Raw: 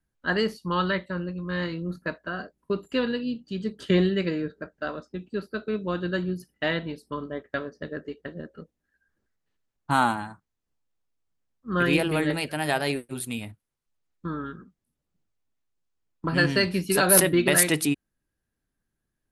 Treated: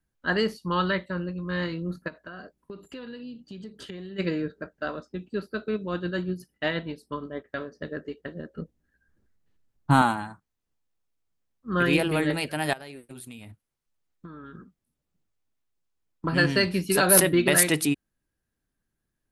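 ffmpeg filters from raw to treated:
-filter_complex "[0:a]asplit=3[s0][s1][s2];[s0]afade=t=out:st=2.07:d=0.02[s3];[s1]acompressor=threshold=0.0141:ratio=6:attack=3.2:release=140:knee=1:detection=peak,afade=t=in:st=2.07:d=0.02,afade=t=out:st=4.18:d=0.02[s4];[s2]afade=t=in:st=4.18:d=0.02[s5];[s3][s4][s5]amix=inputs=3:normalize=0,asplit=3[s6][s7][s8];[s6]afade=t=out:st=5.76:d=0.02[s9];[s7]tremolo=f=8.4:d=0.38,afade=t=in:st=5.76:d=0.02,afade=t=out:st=7.71:d=0.02[s10];[s8]afade=t=in:st=7.71:d=0.02[s11];[s9][s10][s11]amix=inputs=3:normalize=0,asettb=1/sr,asplit=3[s12][s13][s14];[s12]atrim=end=8.564[s15];[s13]atrim=start=8.56:end=10.02,asetpts=PTS-STARTPTS,afade=t=in:d=0.004:c=qsin,afade=t=out:st=1.456:d=0.004:c=qsin,lowshelf=f=340:g=11[s16];[s14]atrim=start=10.016[s17];[s15][s16]acrossfade=d=0.004:c1=hsin:c2=qsin[s18];[s18][s17]acrossfade=d=0.004:c1=qsin:c2=hsin,asettb=1/sr,asplit=3[s19][s20][s21];[s19]atrim=end=12.734[s22];[s20]atrim=start=12.73:end=14.55,asetpts=PTS-STARTPTS,afade=t=in:d=0.004:c=qsin,afade=t=out:st=1.816:d=0.004:c=qsin,acompressor=threshold=0.0112:ratio=6:attack=3.2:release=140:knee=1:detection=peak[s23];[s21]atrim=start=14.546[s24];[s22][s23]acrossfade=d=0.004:c1=hsin:c2=qsin[s25];[s25][s24]acrossfade=d=0.004:c1=qsin:c2=hsin"

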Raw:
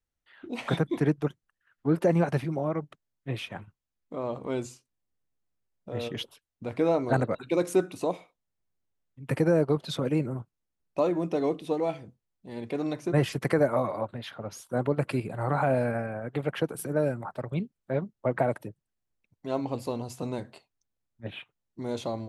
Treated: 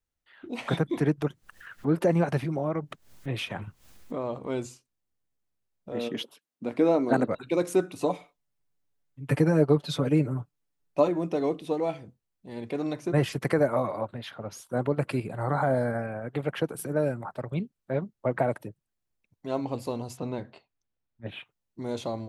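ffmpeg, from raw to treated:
-filter_complex "[0:a]asettb=1/sr,asplit=3[s0][s1][s2];[s0]atrim=end=0.814[s3];[s1]atrim=start=0.81:end=4.23,asetpts=PTS-STARTPTS,afade=t=in:d=0.004:c=qsin,afade=t=out:st=3.416:d=0.004:c=qsin,acompressor=mode=upward:threshold=0.0562:ratio=2.5:attack=3.2:release=140:knee=2.83:detection=peak[s4];[s2]atrim=start=4.226[s5];[s3][s4]acrossfade=d=0.004:c1=hsin:c2=qsin[s6];[s6][s5]acrossfade=d=0.004:c1=qsin:c2=hsin,asettb=1/sr,asplit=3[s7][s8][s9];[s7]atrim=end=5.924[s10];[s8]atrim=start=5.92:end=7.28,asetpts=PTS-STARTPTS,afade=t=in:d=0.004:c=qsin,afade=t=out:st=1.356:d=0.004:c=qsin,highpass=f=230:t=q:w=1.9[s11];[s9]atrim=start=7.276[s12];[s10][s11]acrossfade=d=0.004:c1=hsin:c2=qsin[s13];[s13][s12]acrossfade=d=0.004:c1=qsin:c2=hsin,asettb=1/sr,asplit=3[s14][s15][s16];[s14]atrim=end=7.974[s17];[s15]atrim=start=7.97:end=11.08,asetpts=PTS-STARTPTS,afade=t=in:d=0.004:c=qsin,afade=t=out:st=3.106:d=0.004:c=qsin,aecho=1:1:6.9:0.7,atrim=end_sample=137151[s18];[s16]atrim=start=11.076[s19];[s17][s18]acrossfade=d=0.004:c1=hsin:c2=qsin[s20];[s20][s19]acrossfade=d=0.004:c1=qsin:c2=hsin,asettb=1/sr,asplit=3[s21][s22][s23];[s21]atrim=end=15.414[s24];[s22]atrim=start=15.41:end=16.02,asetpts=PTS-STARTPTS,afade=t=in:d=0.004:c=qsin,afade=t=out:st=0.606:d=0.004:c=qsin,asuperstop=centerf=2600:order=4:qfactor=3[s25];[s23]atrim=start=16.016[s26];[s24][s25]acrossfade=d=0.004:c1=hsin:c2=qsin[s27];[s27][s26]acrossfade=d=0.004:c1=qsin:c2=hsin,asettb=1/sr,asplit=3[s28][s29][s30];[s28]atrim=end=20.174[s31];[s29]atrim=start=20.17:end=21.28,asetpts=PTS-STARTPTS,afade=t=in:d=0.004:c=qsin,afade=t=out:st=1.106:d=0.004:c=qsin,lowpass=3900[s32];[s30]atrim=start=21.276[s33];[s31][s32]acrossfade=d=0.004:c1=hsin:c2=qsin[s34];[s34][s33]acrossfade=d=0.004:c1=qsin:c2=hsin"

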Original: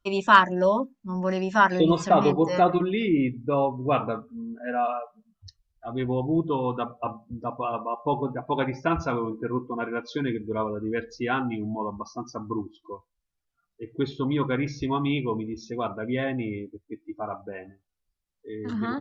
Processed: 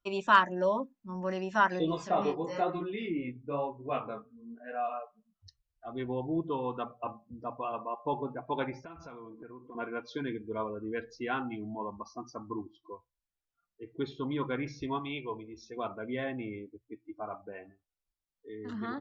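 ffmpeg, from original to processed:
-filter_complex "[0:a]asettb=1/sr,asplit=3[s0][s1][s2];[s0]atrim=end=1.794[s3];[s1]atrim=start=1.79:end=4.94,asetpts=PTS-STARTPTS,afade=t=in:d=0.004:c=qsin,afade=t=out:st=3.146:d=0.004:c=qsin,flanger=delay=18:depth=6.7:speed=1[s4];[s2]atrim=start=4.936[s5];[s3][s4]acrossfade=d=0.004:c1=hsin:c2=qsin[s6];[s6][s5]acrossfade=d=0.004:c1=qsin:c2=hsin,asettb=1/sr,asplit=3[s7][s8][s9];[s7]atrim=end=8.794[s10];[s8]atrim=start=8.79:end=9.75,asetpts=PTS-STARTPTS,afade=t=in:d=0.004:c=qsin,afade=t=out:st=0.956:d=0.004:c=qsin,acompressor=threshold=0.0158:ratio=10:attack=3.2:release=140:knee=1:detection=peak[s11];[s9]atrim=start=9.746[s12];[s10][s11]acrossfade=d=0.004:c1=hsin:c2=qsin[s13];[s13][s12]acrossfade=d=0.004:c1=qsin:c2=hsin,asettb=1/sr,asplit=3[s14][s15][s16];[s14]atrim=end=14.994[s17];[s15]atrim=start=14.99:end=15.77,asetpts=PTS-STARTPTS,afade=t=in:d=0.004:c=qsin,afade=t=out:st=0.776:d=0.004:c=qsin,equalizer=f=200:t=o:w=1.3:g=-10[s18];[s16]atrim=start=15.766[s19];[s17][s18]acrossfade=d=0.004:c1=hsin:c2=qsin[s20];[s20][s19]acrossfade=d=0.004:c1=qsin:c2=hsin,bass=f=250:g=-4,treble=f=4000:g=-2,bandreject=f=60:t=h:w=6,bandreject=f=120:t=h:w=6,volume=0.473"

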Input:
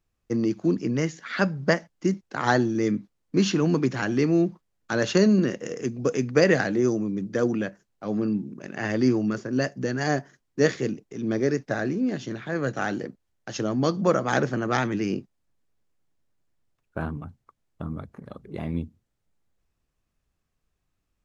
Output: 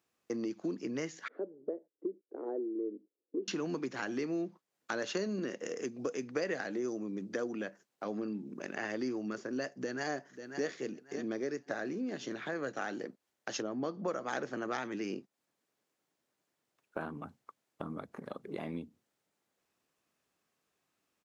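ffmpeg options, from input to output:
-filter_complex "[0:a]asettb=1/sr,asplit=3[s0][s1][s2];[s0]atrim=end=1.284[s3];[s1]atrim=start=1.28:end=3.48,asetpts=PTS-STARTPTS,afade=t=in:d=0.004:c=qsin,afade=t=out:st=2.196:d=0.004:c=qsin,asuperpass=centerf=390:order=4:qfactor=2.1[s4];[s2]atrim=start=3.476[s5];[s3][s4]acrossfade=d=0.004:c1=hsin:c2=qsin[s6];[s6][s5]acrossfade=d=0.004:c1=qsin:c2=hsin,asplit=2[s7][s8];[s8]afade=t=in:st=9.66:d=0.01,afade=t=out:st=10.68:d=0.01,aecho=0:1:540|1080|1620:0.133352|0.0400056|0.0120017[s9];[s7][s9]amix=inputs=2:normalize=0,asettb=1/sr,asplit=3[s10][s11][s12];[s10]atrim=end=13.624[s13];[s11]atrim=start=13.62:end=14.08,asetpts=PTS-STARTPTS,afade=t=in:d=0.004:c=qsin,afade=t=out:st=0.456:d=0.004:c=qsin,lowpass=f=1600:p=1[s14];[s12]atrim=start=14.076[s15];[s13][s14]acrossfade=d=0.004:c1=hsin:c2=qsin[s16];[s16][s15]acrossfade=d=0.004:c1=qsin:c2=hsin,highpass=280,acompressor=threshold=0.00891:ratio=3,volume=1.41"

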